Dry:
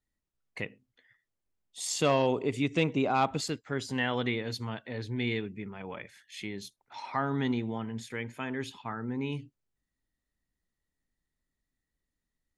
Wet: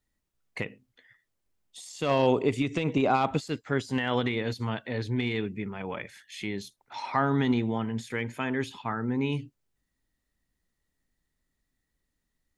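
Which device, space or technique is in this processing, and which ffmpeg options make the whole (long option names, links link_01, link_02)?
de-esser from a sidechain: -filter_complex "[0:a]asplit=2[link_01][link_02];[link_02]highpass=5900,apad=whole_len=554542[link_03];[link_01][link_03]sidechaincompress=threshold=-49dB:ratio=8:attack=1.1:release=62,volume=5.5dB"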